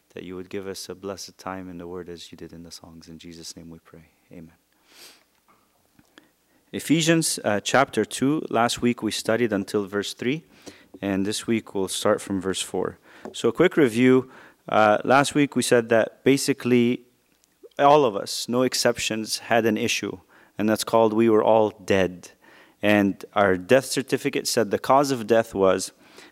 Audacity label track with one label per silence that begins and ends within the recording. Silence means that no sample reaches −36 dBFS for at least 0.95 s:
5.070000	6.180000	silence